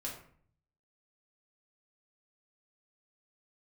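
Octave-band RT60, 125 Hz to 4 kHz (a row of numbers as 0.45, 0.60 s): 0.95, 0.70, 0.55, 0.50, 0.50, 0.35 s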